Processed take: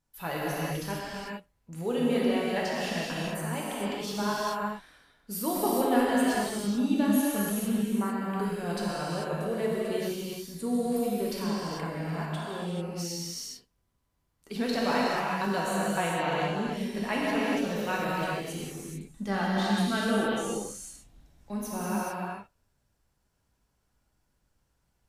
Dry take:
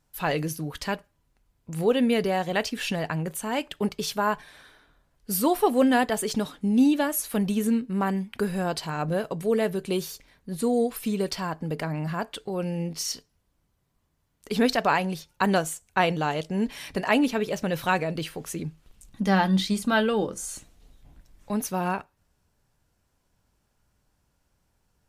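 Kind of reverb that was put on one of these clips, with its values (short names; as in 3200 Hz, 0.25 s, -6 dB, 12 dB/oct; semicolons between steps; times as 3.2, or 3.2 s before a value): non-linear reverb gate 0.47 s flat, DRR -6.5 dB; gain -10.5 dB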